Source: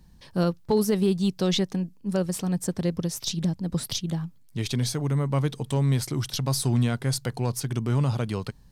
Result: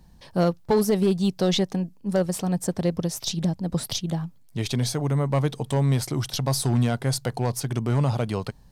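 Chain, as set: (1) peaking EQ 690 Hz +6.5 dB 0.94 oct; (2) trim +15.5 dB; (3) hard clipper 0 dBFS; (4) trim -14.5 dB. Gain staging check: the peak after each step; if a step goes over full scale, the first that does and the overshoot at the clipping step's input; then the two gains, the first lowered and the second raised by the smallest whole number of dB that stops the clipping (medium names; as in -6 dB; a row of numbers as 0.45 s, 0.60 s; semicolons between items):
-10.5 dBFS, +5.0 dBFS, 0.0 dBFS, -14.5 dBFS; step 2, 5.0 dB; step 2 +10.5 dB, step 4 -9.5 dB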